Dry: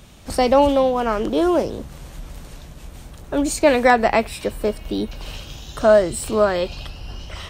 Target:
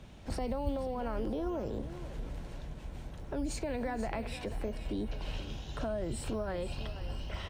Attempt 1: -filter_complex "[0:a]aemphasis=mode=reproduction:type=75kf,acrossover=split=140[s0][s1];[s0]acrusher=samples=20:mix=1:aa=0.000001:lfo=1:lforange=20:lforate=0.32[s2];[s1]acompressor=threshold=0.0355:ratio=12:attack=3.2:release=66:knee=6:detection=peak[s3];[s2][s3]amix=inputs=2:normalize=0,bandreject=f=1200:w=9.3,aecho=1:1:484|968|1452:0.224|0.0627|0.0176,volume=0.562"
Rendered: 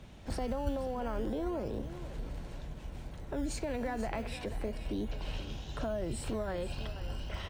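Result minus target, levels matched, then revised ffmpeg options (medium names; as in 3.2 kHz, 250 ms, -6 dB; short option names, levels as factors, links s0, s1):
decimation with a swept rate: distortion +10 dB
-filter_complex "[0:a]aemphasis=mode=reproduction:type=75kf,acrossover=split=140[s0][s1];[s0]acrusher=samples=7:mix=1:aa=0.000001:lfo=1:lforange=7:lforate=0.32[s2];[s1]acompressor=threshold=0.0355:ratio=12:attack=3.2:release=66:knee=6:detection=peak[s3];[s2][s3]amix=inputs=2:normalize=0,bandreject=f=1200:w=9.3,aecho=1:1:484|968|1452:0.224|0.0627|0.0176,volume=0.562"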